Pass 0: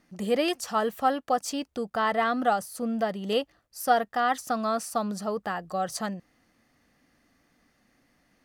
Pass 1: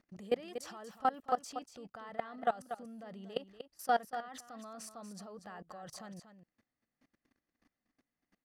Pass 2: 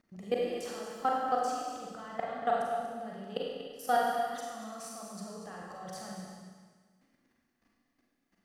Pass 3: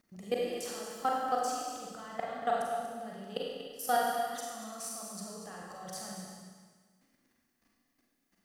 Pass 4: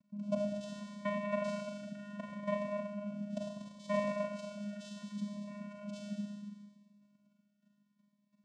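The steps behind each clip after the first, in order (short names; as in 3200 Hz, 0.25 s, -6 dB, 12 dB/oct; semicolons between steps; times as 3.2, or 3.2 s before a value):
high shelf 7400 Hz -8.5 dB; level quantiser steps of 22 dB; echo 0.238 s -10.5 dB; gain -4 dB
Schroeder reverb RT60 1.5 s, combs from 33 ms, DRR -3 dB
high shelf 5000 Hz +10.5 dB; gain -1.5 dB
vocoder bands 4, square 205 Hz; cascading phaser rising 0.71 Hz; gain -1 dB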